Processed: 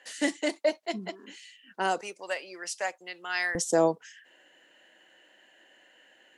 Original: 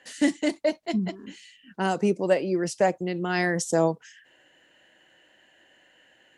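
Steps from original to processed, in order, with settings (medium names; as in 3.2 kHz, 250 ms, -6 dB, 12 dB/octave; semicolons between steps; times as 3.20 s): high-pass 420 Hz 12 dB/octave, from 2.01 s 1.2 kHz, from 3.55 s 250 Hz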